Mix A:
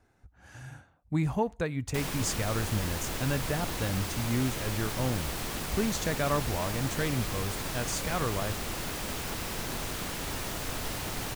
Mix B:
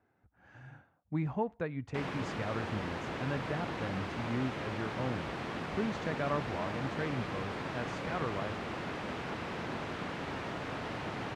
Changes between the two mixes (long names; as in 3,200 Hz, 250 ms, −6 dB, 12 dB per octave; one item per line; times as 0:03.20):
speech −4.5 dB
master: add band-pass filter 120–2,300 Hz